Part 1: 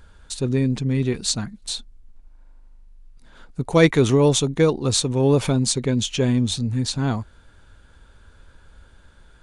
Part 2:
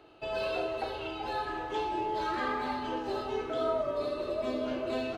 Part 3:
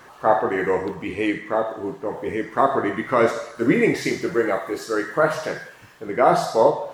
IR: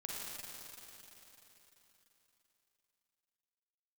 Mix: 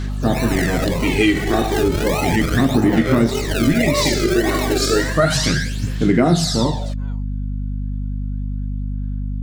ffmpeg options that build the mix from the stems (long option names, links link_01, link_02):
-filter_complex "[0:a]highpass=540,acompressor=threshold=-31dB:ratio=6,volume=-14dB[link_01];[1:a]equalizer=frequency=1400:width_type=o:width=1:gain=-5,acrusher=samples=37:mix=1:aa=0.000001:lfo=1:lforange=22.2:lforate=1.7,dynaudnorm=framelen=110:gausssize=7:maxgain=11dB,volume=0.5dB[link_02];[2:a]equalizer=frequency=125:width_type=o:width=1:gain=9,equalizer=frequency=250:width_type=o:width=1:gain=10,equalizer=frequency=500:width_type=o:width=1:gain=-9,equalizer=frequency=1000:width_type=o:width=1:gain=-10,equalizer=frequency=4000:width_type=o:width=1:gain=10,equalizer=frequency=8000:width_type=o:width=1:gain=8,dynaudnorm=framelen=370:gausssize=5:maxgain=11.5dB,volume=2.5dB[link_03];[link_01][link_02][link_03]amix=inputs=3:normalize=0,aphaser=in_gain=1:out_gain=1:delay=2.7:decay=0.58:speed=0.33:type=sinusoidal,aeval=exprs='val(0)+0.0794*(sin(2*PI*50*n/s)+sin(2*PI*2*50*n/s)/2+sin(2*PI*3*50*n/s)/3+sin(2*PI*4*50*n/s)/4+sin(2*PI*5*50*n/s)/5)':channel_layout=same,acompressor=threshold=-12dB:ratio=4"